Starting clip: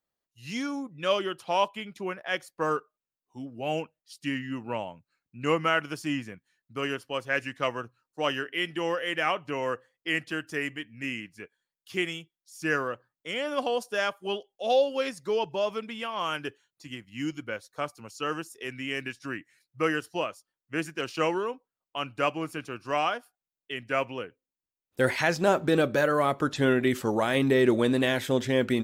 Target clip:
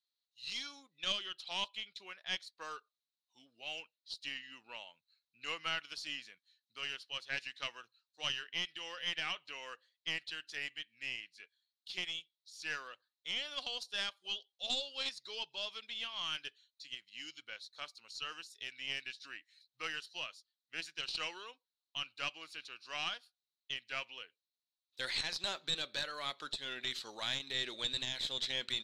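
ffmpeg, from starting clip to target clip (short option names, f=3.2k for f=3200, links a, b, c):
-af "bandpass=f=4k:t=q:w=7.1:csg=0,aeval=exprs='0.0422*(cos(1*acos(clip(val(0)/0.0422,-1,1)))-cos(1*PI/2))+0.0188*(cos(2*acos(clip(val(0)/0.0422,-1,1)))-cos(2*PI/2))':c=same,alimiter=level_in=9.5dB:limit=-24dB:level=0:latency=1:release=272,volume=-9.5dB,volume=11.5dB"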